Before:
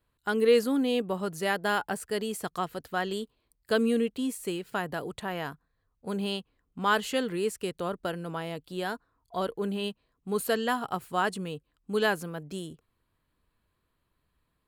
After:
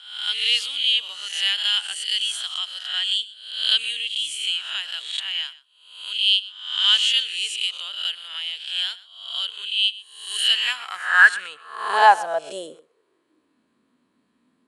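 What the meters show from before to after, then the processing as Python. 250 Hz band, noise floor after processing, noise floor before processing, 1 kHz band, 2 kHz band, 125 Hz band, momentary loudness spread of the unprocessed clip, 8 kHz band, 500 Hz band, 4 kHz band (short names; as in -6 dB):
under -20 dB, -68 dBFS, -77 dBFS, +8.0 dB, +12.0 dB, under -25 dB, 12 LU, +8.5 dB, -6.5 dB, +20.5 dB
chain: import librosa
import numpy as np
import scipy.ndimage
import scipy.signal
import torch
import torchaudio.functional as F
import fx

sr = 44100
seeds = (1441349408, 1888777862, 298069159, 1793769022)

p1 = fx.spec_swells(x, sr, rise_s=0.72)
p2 = fx.filter_sweep_highpass(p1, sr, from_hz=3100.0, to_hz=240.0, start_s=10.43, end_s=13.71, q=6.8)
p3 = scipy.signal.sosfilt(scipy.signal.butter(8, 10000.0, 'lowpass', fs=sr, output='sos'), p2)
p4 = p3 + fx.echo_single(p3, sr, ms=123, db=-19.0, dry=0)
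y = p4 * librosa.db_to_amplitude(4.5)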